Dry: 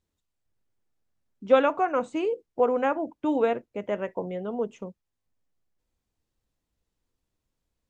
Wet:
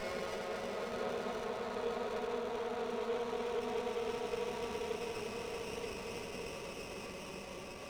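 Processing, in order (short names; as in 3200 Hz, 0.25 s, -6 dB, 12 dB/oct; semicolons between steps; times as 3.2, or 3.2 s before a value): band-pass 2900 Hz, Q 2.8; Paulstretch 18×, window 0.50 s, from 4.42; running maximum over 9 samples; gain +16.5 dB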